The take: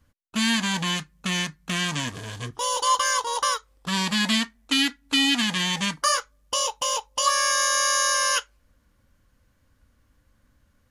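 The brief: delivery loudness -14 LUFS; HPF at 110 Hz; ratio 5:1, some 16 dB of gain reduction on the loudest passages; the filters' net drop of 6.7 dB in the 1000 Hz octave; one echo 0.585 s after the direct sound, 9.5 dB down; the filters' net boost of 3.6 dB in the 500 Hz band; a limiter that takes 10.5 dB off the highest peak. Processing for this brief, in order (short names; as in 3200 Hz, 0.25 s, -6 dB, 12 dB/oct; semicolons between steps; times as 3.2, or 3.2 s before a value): HPF 110 Hz; bell 500 Hz +6.5 dB; bell 1000 Hz -8.5 dB; compressor 5:1, threshold -36 dBFS; limiter -31 dBFS; echo 0.585 s -9.5 dB; gain +26.5 dB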